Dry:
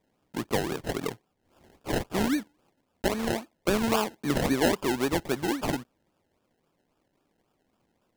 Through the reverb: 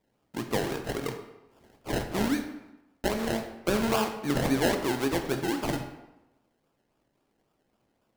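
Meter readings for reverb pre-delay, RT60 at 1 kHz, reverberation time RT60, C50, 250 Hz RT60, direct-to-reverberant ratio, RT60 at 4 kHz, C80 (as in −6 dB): 8 ms, 1.0 s, 0.95 s, 8.0 dB, 0.95 s, 4.5 dB, 0.70 s, 10.0 dB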